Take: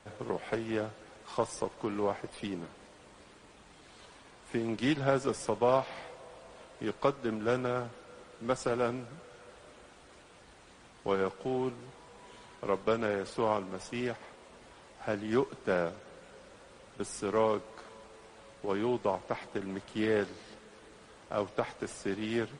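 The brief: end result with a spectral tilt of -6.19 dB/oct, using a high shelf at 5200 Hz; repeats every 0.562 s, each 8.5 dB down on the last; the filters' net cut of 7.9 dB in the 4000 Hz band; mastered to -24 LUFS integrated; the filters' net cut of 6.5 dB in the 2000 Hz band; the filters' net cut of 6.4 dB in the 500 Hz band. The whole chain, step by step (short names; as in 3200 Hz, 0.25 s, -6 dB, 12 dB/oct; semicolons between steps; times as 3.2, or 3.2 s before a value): bell 500 Hz -7.5 dB; bell 2000 Hz -6.5 dB; bell 4000 Hz -6 dB; high shelf 5200 Hz -5 dB; feedback echo 0.562 s, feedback 38%, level -8.5 dB; gain +14.5 dB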